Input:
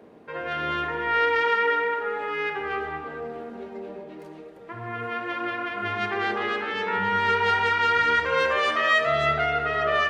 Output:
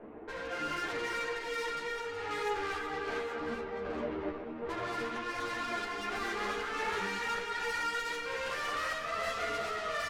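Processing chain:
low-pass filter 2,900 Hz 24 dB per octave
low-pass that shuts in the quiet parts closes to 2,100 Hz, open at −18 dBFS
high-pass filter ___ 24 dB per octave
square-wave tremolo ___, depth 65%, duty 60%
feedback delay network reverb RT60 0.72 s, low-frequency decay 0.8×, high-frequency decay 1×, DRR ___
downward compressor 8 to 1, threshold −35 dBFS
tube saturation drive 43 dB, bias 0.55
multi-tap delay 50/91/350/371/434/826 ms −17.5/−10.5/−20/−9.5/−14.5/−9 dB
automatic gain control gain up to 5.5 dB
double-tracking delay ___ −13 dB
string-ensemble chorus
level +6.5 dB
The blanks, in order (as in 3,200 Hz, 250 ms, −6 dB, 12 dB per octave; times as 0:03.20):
190 Hz, 1.3 Hz, 6 dB, 42 ms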